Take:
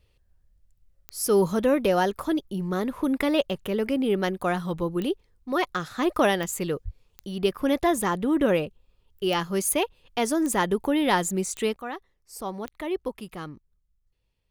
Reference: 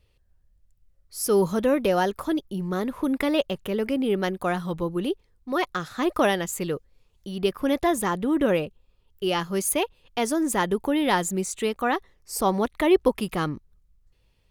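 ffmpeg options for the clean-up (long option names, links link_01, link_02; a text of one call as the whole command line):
ffmpeg -i in.wav -filter_complex "[0:a]adeclick=threshold=4,asplit=3[link_01][link_02][link_03];[link_01]afade=type=out:start_time=6.84:duration=0.02[link_04];[link_02]highpass=frequency=140:width=0.5412,highpass=frequency=140:width=1.3066,afade=type=in:start_time=6.84:duration=0.02,afade=type=out:start_time=6.96:duration=0.02[link_05];[link_03]afade=type=in:start_time=6.96:duration=0.02[link_06];[link_04][link_05][link_06]amix=inputs=3:normalize=0,asetnsamples=nb_out_samples=441:pad=0,asendcmd='11.76 volume volume 10.5dB',volume=0dB" out.wav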